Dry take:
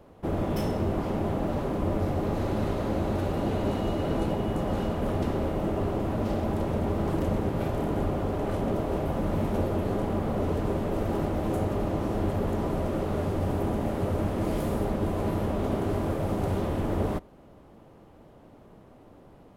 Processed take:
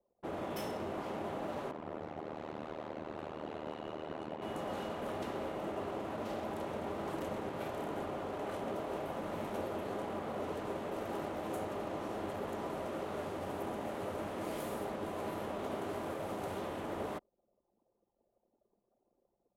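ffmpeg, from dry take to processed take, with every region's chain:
ffmpeg -i in.wav -filter_complex "[0:a]asettb=1/sr,asplit=3[link_01][link_02][link_03];[link_01]atrim=end=1.714[link_04];[link_02]atrim=start=1.71:end=4.42,asetpts=PTS-STARTPTS,afade=type=in:duration=0.004:curve=qsin,afade=type=out:start_time=2.706:duration=0.004:curve=qsin,highshelf=frequency=5700:gain=-11,tremolo=f=77:d=1[link_05];[link_03]atrim=start=4.416[link_06];[link_04][link_05]acrossfade=duration=0.004:curve1=hsin:curve2=qsin[link_07];[link_07][link_06]acrossfade=duration=0.004:curve1=qsin:curve2=hsin,highpass=frequency=700:poles=1,anlmdn=0.01,equalizer=frequency=5000:width_type=o:width=0.32:gain=-2.5,volume=-4dB" out.wav

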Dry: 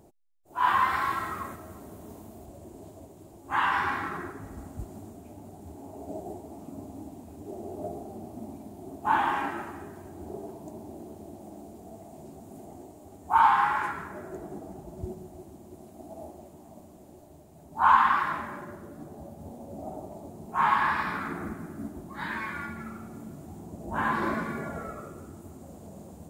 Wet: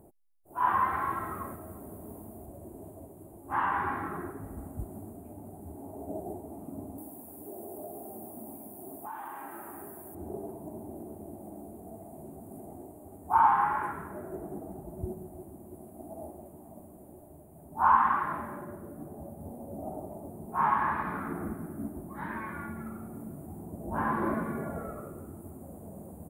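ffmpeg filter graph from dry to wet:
ffmpeg -i in.wav -filter_complex "[0:a]asettb=1/sr,asplit=3[link_01][link_02][link_03];[link_01]atrim=end=6.984[link_04];[link_02]atrim=start=6.98:end=10.15,asetpts=PTS-STARTPTS,afade=type=in:duration=0.004:curve=qsin,afade=type=out:start_time=3.166:duration=0.004:curve=qsin,aemphasis=mode=production:type=bsi,acompressor=threshold=-38dB:ratio=4:attack=3.2:release=140:knee=1:detection=peak[link_05];[link_03]atrim=start=10.146[link_06];[link_04][link_05]acrossfade=duration=0.004:curve1=hsin:curve2=qsin[link_07];[link_07][link_06]acrossfade=duration=0.004:curve1=qsin:curve2=hsin,aemphasis=mode=reproduction:type=cd,acrossover=split=3400[link_08][link_09];[link_09]acompressor=threshold=-58dB:ratio=4:attack=1:release=60[link_10];[link_08][link_10]amix=inputs=2:normalize=0,firequalizer=gain_entry='entry(600,0);entry(1800,-7);entry(5000,-20);entry(10000,14)':delay=0.05:min_phase=1" out.wav

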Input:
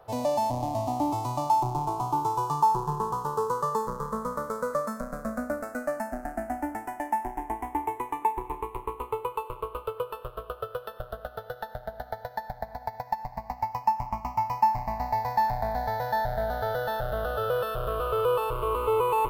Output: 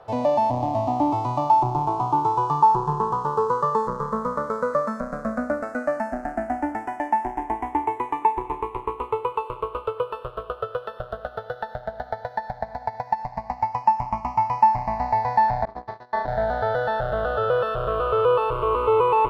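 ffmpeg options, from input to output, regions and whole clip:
ffmpeg -i in.wav -filter_complex "[0:a]asettb=1/sr,asplit=3[link_01][link_02][link_03];[link_01]atrim=end=15.654[link_04];[link_02]atrim=start=15.65:end=16.28,asetpts=PTS-STARTPTS,afade=type=in:duration=0.004:curve=qsin,afade=type=out:start_time=0.626:duration=0.004:curve=qsin,lowpass=7100,agate=range=-26dB:threshold=-28dB:ratio=16:release=100:detection=peak,tremolo=f=250:d=0.788[link_05];[link_03]atrim=start=16.276[link_06];[link_04][link_05]acrossfade=duration=0.004:curve1=hsin:curve2=qsin[link_07];[link_07][link_06]acrossfade=duration=0.004:curve1=qsin:curve2=hsin,lowpass=6100,acrossover=split=3100[link_08][link_09];[link_09]acompressor=threshold=-59dB:ratio=4:attack=1:release=60[link_10];[link_08][link_10]amix=inputs=2:normalize=0,lowshelf=frequency=63:gain=-8,volume=6dB" out.wav

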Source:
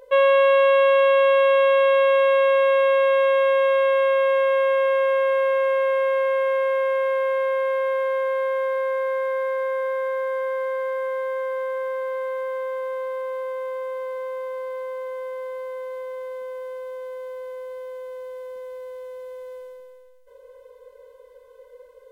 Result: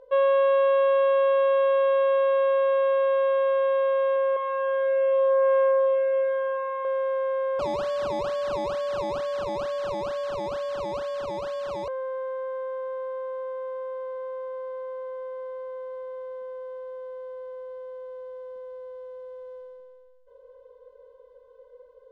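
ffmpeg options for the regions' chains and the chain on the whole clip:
ffmpeg -i in.wav -filter_complex "[0:a]asettb=1/sr,asplit=3[link_01][link_02][link_03];[link_01]atrim=end=4.164[link_04];[link_02]atrim=start=4.16:end=6.85,asetpts=PTS-STARTPTS,afade=type=in:duration=0.004:curve=qsin,afade=type=out:start_time=2.686:duration=0.004:curve=qsin,highpass=180,lowpass=3000,aecho=1:1:203:0.668,atrim=end_sample=118629[link_05];[link_03]atrim=start=6.846[link_06];[link_04][link_05]acrossfade=duration=0.004:curve1=hsin:curve2=qsin[link_07];[link_07][link_06]acrossfade=duration=0.004:curve1=qsin:curve2=hsin,asettb=1/sr,asplit=3[link_08][link_09][link_10];[link_08]atrim=end=7.594[link_11];[link_09]atrim=start=7.59:end=11.88,asetpts=PTS-STARTPTS,afade=type=in:duration=0.004:curve=qsin,afade=type=out:start_time=4.286:duration=0.004:curve=qsin,afreqshift=45,acrusher=samples=21:mix=1:aa=0.000001:lfo=1:lforange=21:lforate=2.2[link_12];[link_10]atrim=start=11.876[link_13];[link_11][link_12]acrossfade=duration=0.004:curve1=hsin:curve2=qsin[link_14];[link_14][link_13]acrossfade=duration=0.004:curve1=qsin:curve2=hsin,lowpass=3000,equalizer=frequency=2200:width_type=o:width=0.72:gain=-13,volume=-3.5dB" out.wav

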